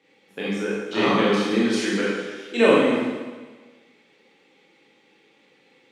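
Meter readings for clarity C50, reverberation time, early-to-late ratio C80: −2.5 dB, 1.4 s, 0.5 dB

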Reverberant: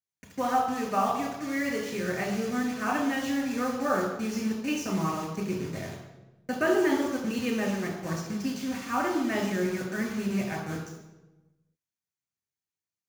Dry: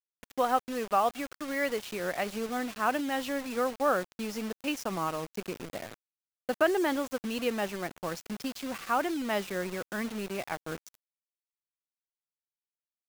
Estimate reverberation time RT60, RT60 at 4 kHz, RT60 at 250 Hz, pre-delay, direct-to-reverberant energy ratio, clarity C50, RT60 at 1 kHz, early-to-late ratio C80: 1.1 s, 0.75 s, 1.3 s, 3 ms, −1.5 dB, 4.5 dB, 0.95 s, 6.5 dB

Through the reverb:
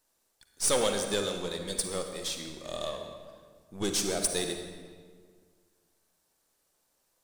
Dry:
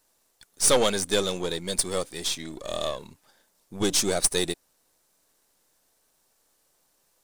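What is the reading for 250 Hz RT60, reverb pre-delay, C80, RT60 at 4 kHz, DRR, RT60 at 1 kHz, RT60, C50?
2.1 s, 39 ms, 6.5 dB, 1.2 s, 4.5 dB, 1.7 s, 1.8 s, 5.0 dB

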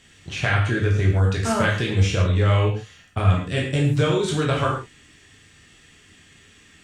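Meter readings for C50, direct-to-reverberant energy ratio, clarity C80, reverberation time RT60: 5.0 dB, −2.5 dB, 8.0 dB, non-exponential decay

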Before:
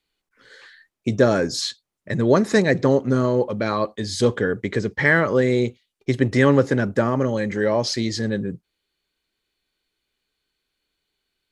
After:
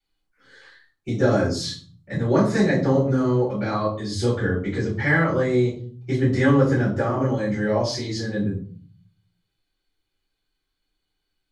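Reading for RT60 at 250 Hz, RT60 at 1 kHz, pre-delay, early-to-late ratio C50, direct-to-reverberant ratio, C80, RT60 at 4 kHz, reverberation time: 0.80 s, 0.45 s, 3 ms, 6.0 dB, −10.5 dB, 11.0 dB, 0.35 s, 0.45 s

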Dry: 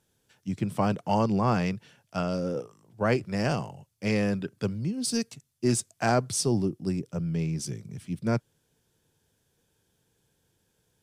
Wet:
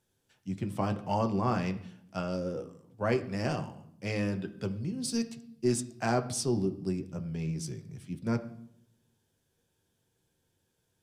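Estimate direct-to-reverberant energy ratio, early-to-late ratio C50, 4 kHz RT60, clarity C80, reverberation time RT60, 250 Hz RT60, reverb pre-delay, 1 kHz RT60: 6.0 dB, 14.5 dB, 0.65 s, 17.0 dB, 0.75 s, 1.1 s, 8 ms, 0.70 s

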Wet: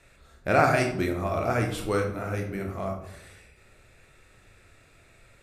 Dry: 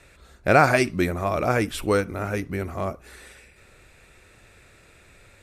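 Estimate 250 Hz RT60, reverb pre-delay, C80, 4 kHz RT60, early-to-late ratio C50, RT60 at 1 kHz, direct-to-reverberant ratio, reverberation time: 0.95 s, 25 ms, 10.0 dB, 0.45 s, 7.0 dB, 0.65 s, 1.5 dB, 0.70 s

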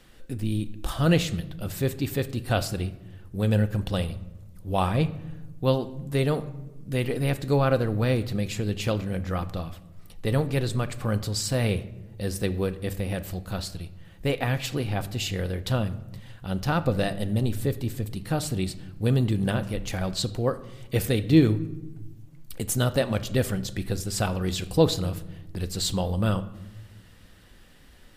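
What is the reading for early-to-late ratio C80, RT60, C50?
18.0 dB, 1.1 s, 15.5 dB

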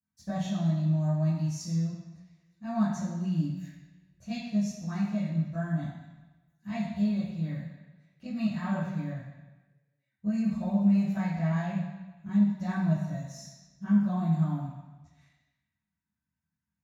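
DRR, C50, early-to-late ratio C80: −14.0 dB, 0.5 dB, 4.0 dB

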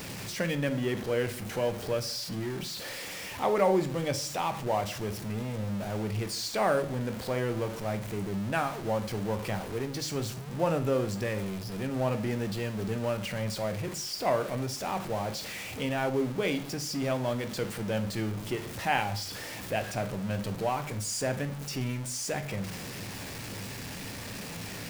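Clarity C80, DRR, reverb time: 18.5 dB, 8.0 dB, 0.50 s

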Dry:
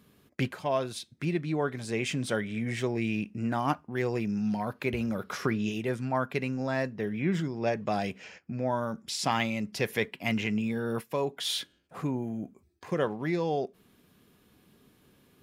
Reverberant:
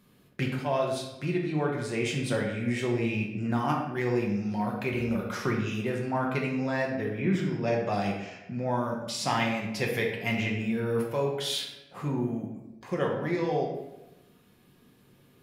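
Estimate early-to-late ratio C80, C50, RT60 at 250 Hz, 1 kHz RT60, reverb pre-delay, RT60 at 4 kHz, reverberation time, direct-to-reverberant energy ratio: 6.0 dB, 3.5 dB, 1.1 s, 0.95 s, 5 ms, 0.65 s, 1.0 s, −2.0 dB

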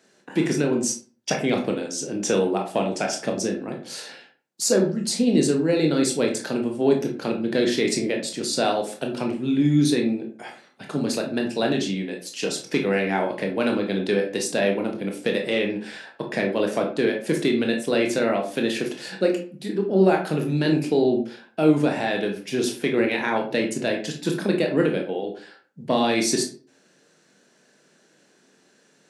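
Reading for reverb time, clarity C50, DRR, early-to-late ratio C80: 0.40 s, 8.0 dB, 1.5 dB, 12.5 dB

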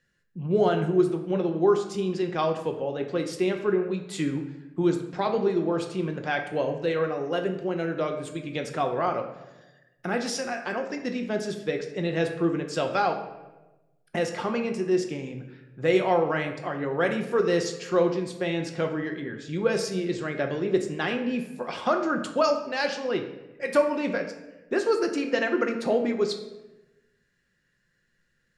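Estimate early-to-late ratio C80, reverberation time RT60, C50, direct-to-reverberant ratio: 10.5 dB, 1.1 s, 8.5 dB, 4.0 dB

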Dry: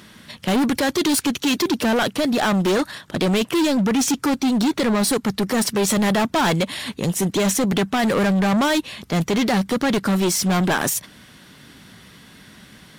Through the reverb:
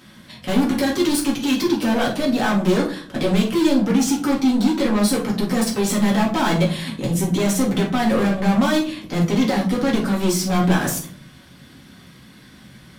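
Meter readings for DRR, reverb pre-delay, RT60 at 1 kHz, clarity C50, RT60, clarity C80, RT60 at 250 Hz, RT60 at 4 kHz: −3.5 dB, 4 ms, 0.45 s, 7.5 dB, 0.55 s, 13.0 dB, 0.85 s, 0.30 s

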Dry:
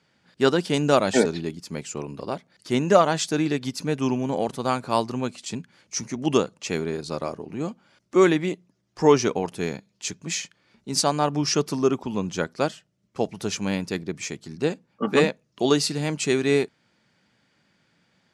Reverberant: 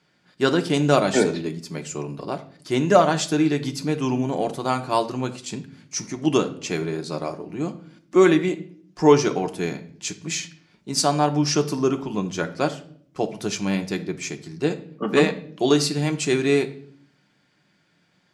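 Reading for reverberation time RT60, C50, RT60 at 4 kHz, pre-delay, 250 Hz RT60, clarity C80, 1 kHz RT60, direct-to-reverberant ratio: 0.60 s, 14.5 dB, 0.50 s, 3 ms, 1.0 s, 18.5 dB, 0.50 s, 5.0 dB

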